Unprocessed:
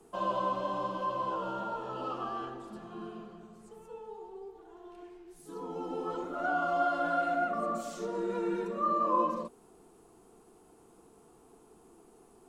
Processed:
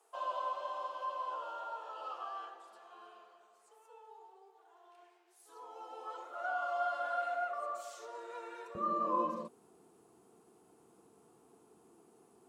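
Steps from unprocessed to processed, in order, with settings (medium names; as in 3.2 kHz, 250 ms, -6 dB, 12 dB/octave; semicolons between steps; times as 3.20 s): high-pass 580 Hz 24 dB/octave, from 8.75 s 90 Hz; trim -5 dB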